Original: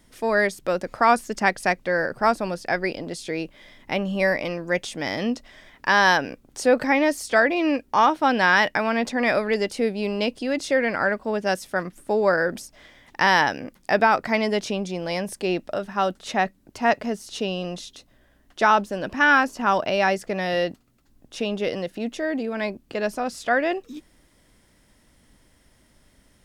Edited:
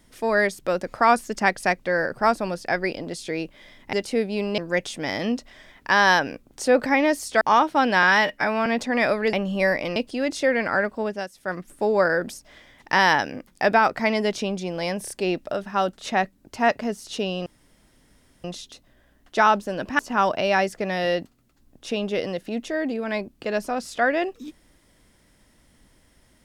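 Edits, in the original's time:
3.93–4.56 swap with 9.59–10.24
7.39–7.88 cut
8.5–8.92 stretch 1.5×
11.18–12 dip -13.5 dB, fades 0.38 s equal-power
15.32 stutter 0.03 s, 3 plays
17.68 insert room tone 0.98 s
19.23–19.48 cut

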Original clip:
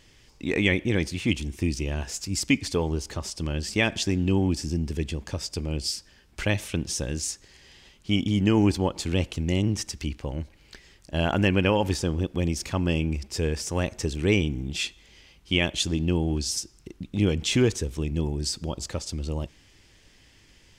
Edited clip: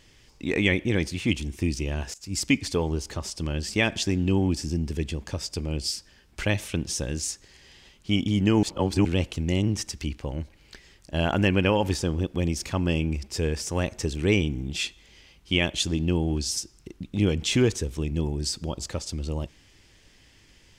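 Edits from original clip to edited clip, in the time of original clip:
2.14–2.39 fade in, from -23.5 dB
8.63–9.05 reverse

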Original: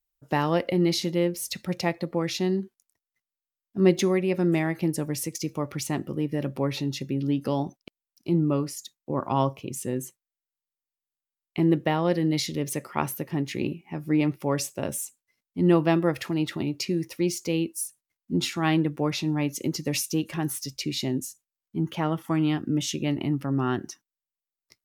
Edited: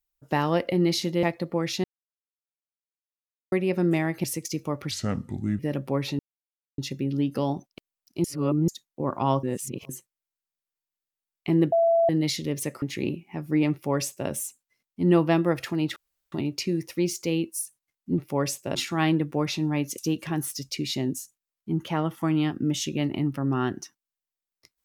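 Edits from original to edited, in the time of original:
1.23–1.84 cut
2.45–4.13 mute
4.85–5.14 cut
5.81–6.28 speed 69%
6.88 insert silence 0.59 s
8.34–8.78 reverse
9.53–9.99 reverse
11.82–12.19 bleep 669 Hz -17 dBFS
12.92–13.4 cut
14.3–14.87 copy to 18.4
16.54 insert room tone 0.36 s
19.63–20.05 cut

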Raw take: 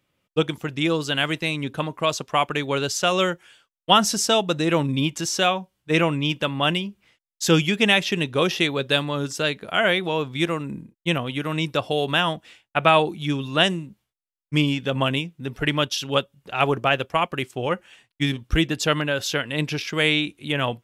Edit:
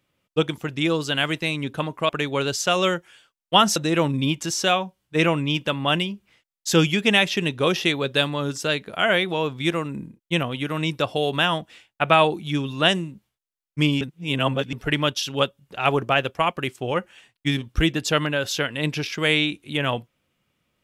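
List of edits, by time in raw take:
2.09–2.45 cut
4.12–4.51 cut
14.76–15.48 reverse

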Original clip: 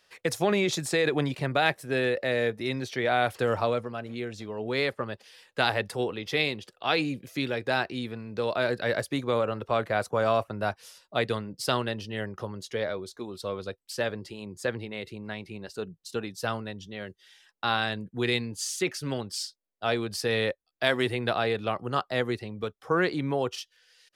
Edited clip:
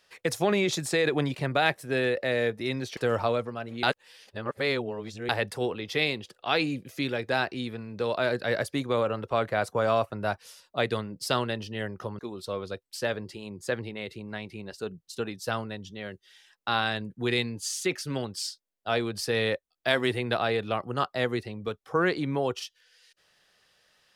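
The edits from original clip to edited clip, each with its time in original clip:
2.97–3.35 cut
4.21–5.67 reverse
12.57–13.15 cut

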